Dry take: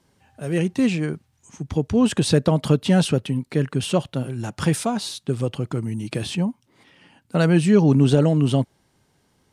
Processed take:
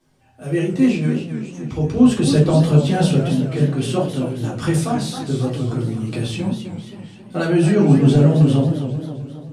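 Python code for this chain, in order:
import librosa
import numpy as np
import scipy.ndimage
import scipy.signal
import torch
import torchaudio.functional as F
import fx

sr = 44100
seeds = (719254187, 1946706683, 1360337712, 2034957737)

y = fx.room_shoebox(x, sr, seeds[0], volume_m3=200.0, walls='furnished', distance_m=3.6)
y = fx.echo_warbled(y, sr, ms=265, feedback_pct=54, rate_hz=2.8, cents=181, wet_db=-9)
y = F.gain(torch.from_numpy(y), -7.0).numpy()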